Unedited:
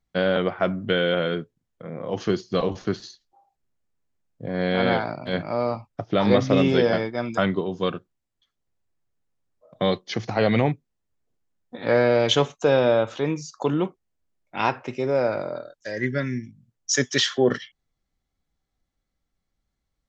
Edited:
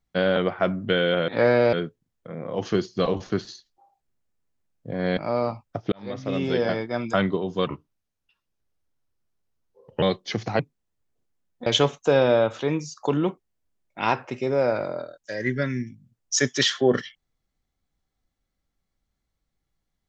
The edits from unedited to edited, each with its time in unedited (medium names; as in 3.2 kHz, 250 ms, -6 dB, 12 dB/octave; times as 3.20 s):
4.72–5.41 s: delete
6.16–7.21 s: fade in
7.91–9.84 s: speed 82%
10.41–10.71 s: delete
11.78–12.23 s: move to 1.28 s